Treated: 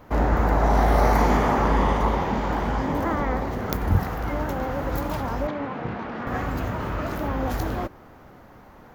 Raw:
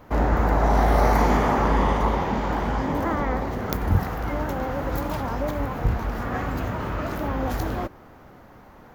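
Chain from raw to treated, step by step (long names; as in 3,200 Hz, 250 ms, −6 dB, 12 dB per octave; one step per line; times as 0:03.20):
0:05.47–0:06.27: Chebyshev band-pass filter 190–3,200 Hz, order 2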